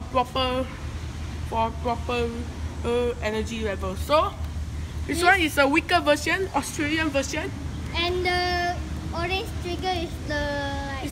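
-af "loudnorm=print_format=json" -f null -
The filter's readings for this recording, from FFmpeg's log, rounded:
"input_i" : "-25.7",
"input_tp" : "-4.8",
"input_lra" : "4.9",
"input_thresh" : "-35.7",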